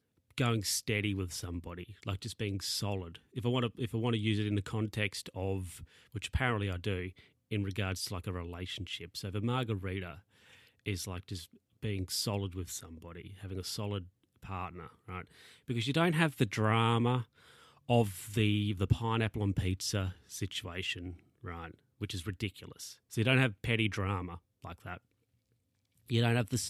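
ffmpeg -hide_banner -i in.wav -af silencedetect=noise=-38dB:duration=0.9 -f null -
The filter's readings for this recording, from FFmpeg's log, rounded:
silence_start: 24.97
silence_end: 26.10 | silence_duration: 1.13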